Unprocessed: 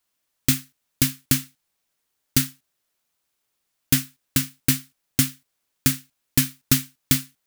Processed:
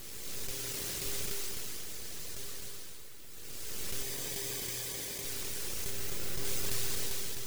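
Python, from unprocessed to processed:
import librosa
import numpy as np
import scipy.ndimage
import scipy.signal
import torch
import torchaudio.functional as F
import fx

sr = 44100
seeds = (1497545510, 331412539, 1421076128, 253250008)

y = fx.spec_blur(x, sr, span_ms=1010.0)
y = np.abs(y)
y = fx.dereverb_blind(y, sr, rt60_s=1.7)
y = fx.peak_eq(y, sr, hz=7900.0, db=-6.0, octaves=2.6, at=(5.9, 6.45))
y = y + 10.0 ** (-3.5 / 20.0) * np.pad(y, (int(257 * sr / 1000.0), 0))[:len(y)]
y = fx.dynamic_eq(y, sr, hz=6000.0, q=0.71, threshold_db=-57.0, ratio=4.0, max_db=4)
y = fx.highpass(y, sr, hz=57.0, slope=12, at=(0.51, 1.06))
y = fx.notch_comb(y, sr, f0_hz=1400.0, at=(4.02, 5.25))
y = fx.echo_warbled(y, sr, ms=121, feedback_pct=75, rate_hz=2.8, cents=193, wet_db=-12.5)
y = y * 10.0 ** (2.0 / 20.0)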